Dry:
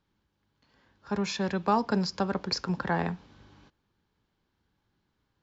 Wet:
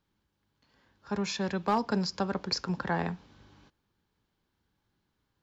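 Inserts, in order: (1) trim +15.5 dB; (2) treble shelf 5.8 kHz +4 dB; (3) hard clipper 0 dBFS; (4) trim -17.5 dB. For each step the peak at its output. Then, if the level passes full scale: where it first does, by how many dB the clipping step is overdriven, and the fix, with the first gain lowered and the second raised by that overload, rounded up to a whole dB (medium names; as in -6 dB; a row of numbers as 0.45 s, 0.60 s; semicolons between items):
+3.5 dBFS, +3.5 dBFS, 0.0 dBFS, -17.5 dBFS; step 1, 3.5 dB; step 1 +11.5 dB, step 4 -13.5 dB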